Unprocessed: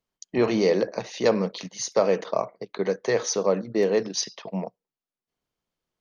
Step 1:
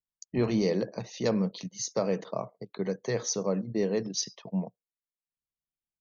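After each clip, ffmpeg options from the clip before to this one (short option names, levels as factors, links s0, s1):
-af "afftdn=nr=17:nf=-46,bass=f=250:g=13,treble=f=4000:g=7,volume=0.355"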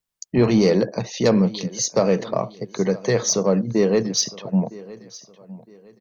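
-filter_complex "[0:a]asplit=2[s0][s1];[s1]asoftclip=type=tanh:threshold=0.0473,volume=0.447[s2];[s0][s2]amix=inputs=2:normalize=0,aecho=1:1:961|1922|2883:0.106|0.0328|0.0102,volume=2.51"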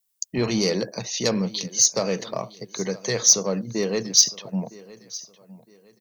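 -af "crystalizer=i=5.5:c=0,volume=0.422"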